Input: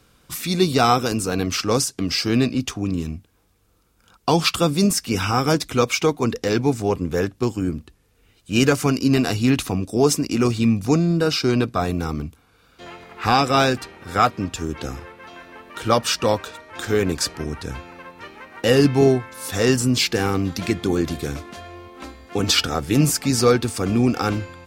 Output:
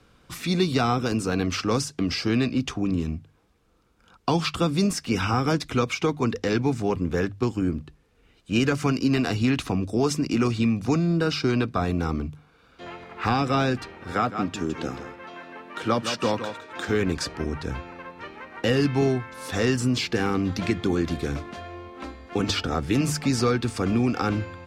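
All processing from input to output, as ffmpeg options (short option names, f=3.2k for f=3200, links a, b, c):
-filter_complex "[0:a]asettb=1/sr,asplit=3[a][b][c];[a]atrim=end=14.124[d];[b]atrim=start=14.12:end=16.89,asetpts=PTS-STARTPTS,afade=t=in:d=0.004:c=qsin,afade=t=out:st=2.766:d=0.004:c=qsin,highpass=140,aecho=1:1:160:0.282,atrim=end_sample=122157[e];[c]atrim=start=16.886[f];[d][e]acrossfade=d=0.004:c1=hsin:c2=qsin[g];[g][f]acrossfade=d=0.004:c1=qsin:c2=hsin,aemphasis=mode=reproduction:type=50fm,bandreject=f=50:t=h:w=6,bandreject=f=100:t=h:w=6,bandreject=f=150:t=h:w=6,acrossover=split=350|940[h][i][j];[h]acompressor=threshold=-21dB:ratio=4[k];[i]acompressor=threshold=-31dB:ratio=4[l];[j]acompressor=threshold=-26dB:ratio=4[m];[k][l][m]amix=inputs=3:normalize=0"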